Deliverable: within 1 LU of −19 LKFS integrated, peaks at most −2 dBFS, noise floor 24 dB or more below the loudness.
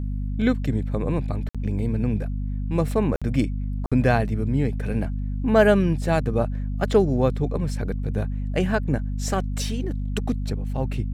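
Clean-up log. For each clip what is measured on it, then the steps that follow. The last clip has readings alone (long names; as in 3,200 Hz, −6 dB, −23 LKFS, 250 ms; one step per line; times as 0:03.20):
number of dropouts 3; longest dropout 56 ms; mains hum 50 Hz; hum harmonics up to 250 Hz; level of the hum −24 dBFS; integrated loudness −24.5 LKFS; sample peak −3.5 dBFS; target loudness −19.0 LKFS
→ repair the gap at 0:01.49/0:03.16/0:03.86, 56 ms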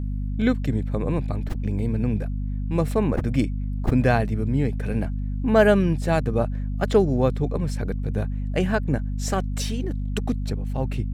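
number of dropouts 0; mains hum 50 Hz; hum harmonics up to 250 Hz; level of the hum −24 dBFS
→ hum removal 50 Hz, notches 5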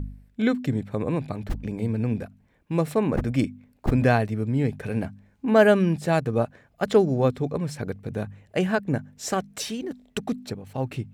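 mains hum none found; integrated loudness −25.5 LKFS; sample peak −4.5 dBFS; target loudness −19.0 LKFS
→ level +6.5 dB
brickwall limiter −2 dBFS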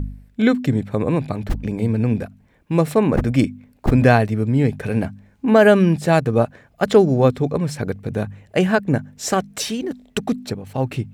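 integrated loudness −19.5 LKFS; sample peak −2.0 dBFS; background noise floor −56 dBFS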